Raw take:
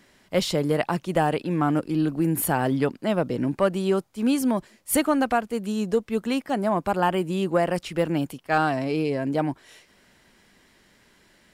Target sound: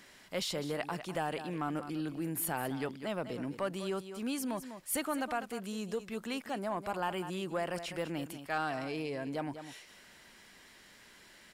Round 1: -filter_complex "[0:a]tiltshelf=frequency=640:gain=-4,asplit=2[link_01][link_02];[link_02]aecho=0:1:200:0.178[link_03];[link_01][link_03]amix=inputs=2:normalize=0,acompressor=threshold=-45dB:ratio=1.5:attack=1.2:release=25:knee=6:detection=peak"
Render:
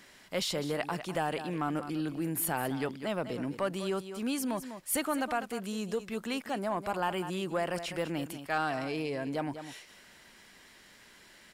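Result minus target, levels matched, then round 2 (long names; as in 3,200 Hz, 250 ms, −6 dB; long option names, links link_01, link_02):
downward compressor: peak gain reduction −3 dB
-filter_complex "[0:a]tiltshelf=frequency=640:gain=-4,asplit=2[link_01][link_02];[link_02]aecho=0:1:200:0.178[link_03];[link_01][link_03]amix=inputs=2:normalize=0,acompressor=threshold=-54.5dB:ratio=1.5:attack=1.2:release=25:knee=6:detection=peak"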